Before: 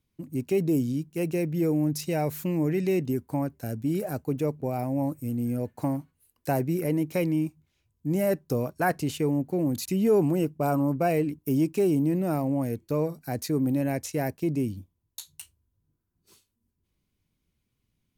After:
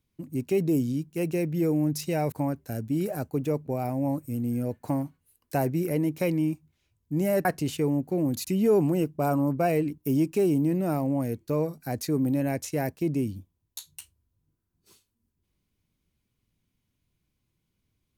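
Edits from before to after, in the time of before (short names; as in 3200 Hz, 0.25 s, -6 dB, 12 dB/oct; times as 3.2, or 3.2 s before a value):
2.32–3.26 cut
8.39–8.86 cut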